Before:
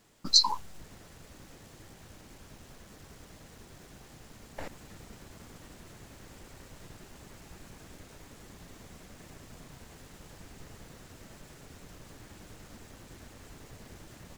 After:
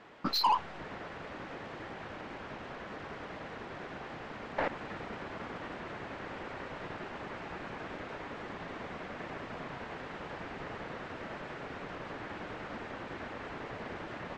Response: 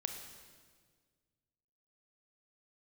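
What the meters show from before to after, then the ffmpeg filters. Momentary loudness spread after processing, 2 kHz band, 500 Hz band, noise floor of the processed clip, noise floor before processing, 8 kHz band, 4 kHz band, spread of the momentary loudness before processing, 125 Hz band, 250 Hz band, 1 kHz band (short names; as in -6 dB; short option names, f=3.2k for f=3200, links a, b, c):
8 LU, +12.5 dB, +11.5 dB, -47 dBFS, -55 dBFS, -18.5 dB, -9.5 dB, 23 LU, +2.0 dB, +7.0 dB, +7.5 dB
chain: -filter_complex "[0:a]lowpass=2.6k,asplit=2[a][b];[b]highpass=f=720:p=1,volume=25dB,asoftclip=type=tanh:threshold=-15dB[c];[a][c]amix=inputs=2:normalize=0,lowpass=f=2k:p=1,volume=-6dB,volume=-2dB"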